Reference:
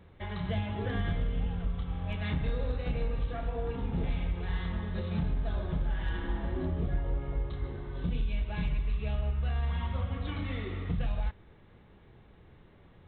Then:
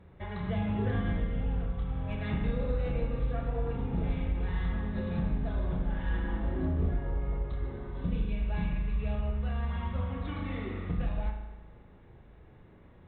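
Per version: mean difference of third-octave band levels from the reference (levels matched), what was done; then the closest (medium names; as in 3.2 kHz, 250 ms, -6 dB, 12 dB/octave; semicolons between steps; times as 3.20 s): 2.0 dB: treble shelf 3.5 kHz -11 dB; band-stop 3.1 kHz, Q 23; spring tank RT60 1.1 s, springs 38 ms, chirp 55 ms, DRR 3.5 dB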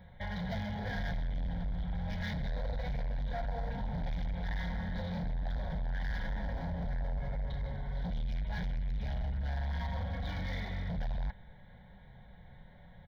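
5.5 dB: comb 5.5 ms, depth 39%; hard clipper -35.5 dBFS, distortion -6 dB; static phaser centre 1.8 kHz, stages 8; trim +4 dB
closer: first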